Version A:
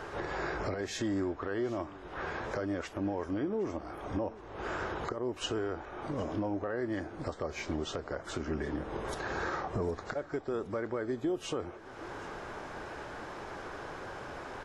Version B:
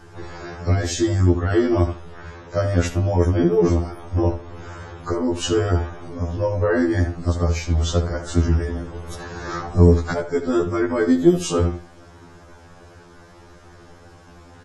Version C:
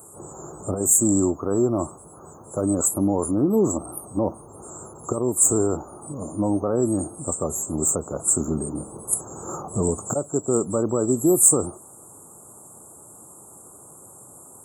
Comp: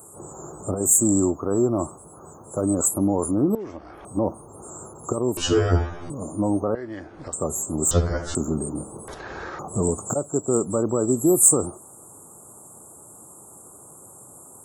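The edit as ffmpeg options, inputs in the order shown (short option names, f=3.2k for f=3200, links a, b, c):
-filter_complex "[0:a]asplit=3[a][b][c];[1:a]asplit=2[d][e];[2:a]asplit=6[f][g][h][i][j][k];[f]atrim=end=3.552[l];[a]atrim=start=3.548:end=4.052[m];[g]atrim=start=4.048:end=5.372[n];[d]atrim=start=5.368:end=6.102[o];[h]atrim=start=6.098:end=6.752[p];[b]atrim=start=6.748:end=7.332[q];[i]atrim=start=7.328:end=7.912[r];[e]atrim=start=7.908:end=8.352[s];[j]atrim=start=8.348:end=9.082[t];[c]atrim=start=9.078:end=9.592[u];[k]atrim=start=9.588[v];[l][m]acrossfade=d=0.004:c1=hsin:c2=hsin[w];[w][n]acrossfade=d=0.004:c1=hsin:c2=hsin[x];[x][o]acrossfade=d=0.004:c1=hsin:c2=hsin[y];[y][p]acrossfade=d=0.004:c1=hsin:c2=hsin[z];[z][q]acrossfade=d=0.004:c1=hsin:c2=hsin[aa];[aa][r]acrossfade=d=0.004:c1=hsin:c2=hsin[ab];[ab][s]acrossfade=d=0.004:c1=hsin:c2=hsin[ac];[ac][t]acrossfade=d=0.004:c1=hsin:c2=hsin[ad];[ad][u]acrossfade=d=0.004:c1=hsin:c2=hsin[ae];[ae][v]acrossfade=d=0.004:c1=hsin:c2=hsin"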